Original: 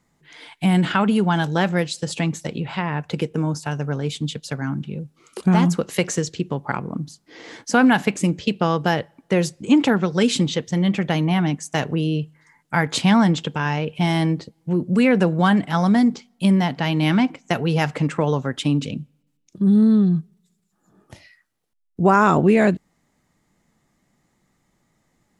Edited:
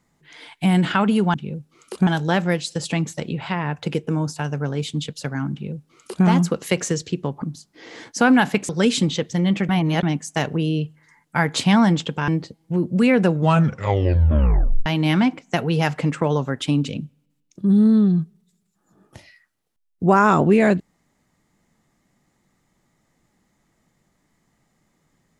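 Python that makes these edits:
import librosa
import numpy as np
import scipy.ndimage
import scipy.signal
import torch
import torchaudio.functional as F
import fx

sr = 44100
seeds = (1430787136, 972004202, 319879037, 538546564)

y = fx.edit(x, sr, fx.duplicate(start_s=4.79, length_s=0.73, to_s=1.34),
    fx.cut(start_s=6.69, length_s=0.26),
    fx.cut(start_s=8.22, length_s=1.85),
    fx.reverse_span(start_s=11.07, length_s=0.34),
    fx.cut(start_s=13.66, length_s=0.59),
    fx.tape_stop(start_s=15.25, length_s=1.58), tone=tone)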